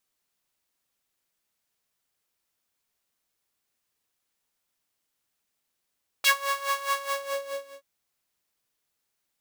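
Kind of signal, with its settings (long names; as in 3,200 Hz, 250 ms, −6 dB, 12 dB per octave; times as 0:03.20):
subtractive patch with tremolo C#5, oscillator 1 saw, sub −24.5 dB, noise −13 dB, filter highpass, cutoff 360 Hz, Q 2.1, filter envelope 3.5 octaves, filter decay 0.08 s, attack 11 ms, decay 0.09 s, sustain −12 dB, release 0.88 s, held 0.70 s, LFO 4.8 Hz, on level 14.5 dB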